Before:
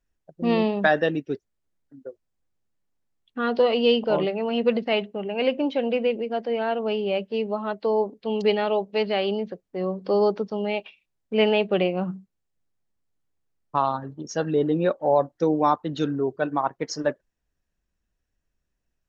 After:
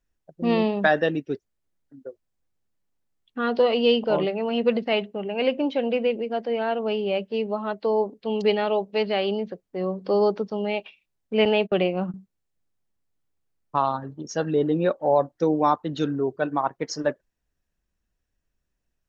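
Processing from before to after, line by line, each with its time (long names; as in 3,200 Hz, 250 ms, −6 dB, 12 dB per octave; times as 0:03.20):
0:11.45–0:12.14: noise gate −30 dBFS, range −27 dB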